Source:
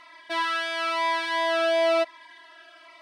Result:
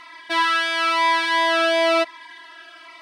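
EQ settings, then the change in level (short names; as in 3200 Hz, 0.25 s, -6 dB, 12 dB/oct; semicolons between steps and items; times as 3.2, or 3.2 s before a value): bell 590 Hz -9.5 dB 0.38 oct; +7.5 dB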